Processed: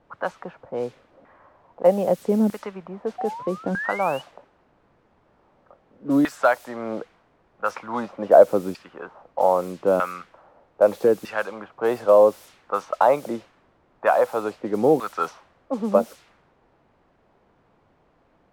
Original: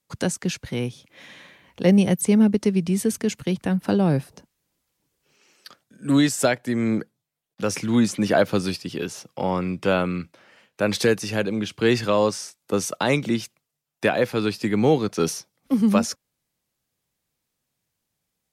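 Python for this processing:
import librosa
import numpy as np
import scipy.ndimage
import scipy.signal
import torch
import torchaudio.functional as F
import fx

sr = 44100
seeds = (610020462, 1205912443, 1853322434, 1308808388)

y = fx.band_shelf(x, sr, hz=850.0, db=10.0, octaves=1.7)
y = fx.spec_paint(y, sr, seeds[0], shape='rise', start_s=3.18, length_s=1.04, low_hz=720.0, high_hz=3000.0, level_db=-28.0)
y = fx.filter_lfo_bandpass(y, sr, shape='saw_down', hz=0.8, low_hz=290.0, high_hz=1700.0, q=1.4)
y = fx.quant_dither(y, sr, seeds[1], bits=8, dither='triangular')
y = fx.env_lowpass(y, sr, base_hz=680.0, full_db=-19.0)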